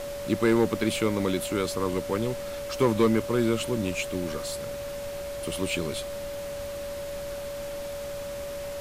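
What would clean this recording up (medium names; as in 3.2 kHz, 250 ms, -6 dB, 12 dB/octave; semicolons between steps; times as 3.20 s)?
clip repair -14 dBFS; band-stop 570 Hz, Q 30; noise print and reduce 30 dB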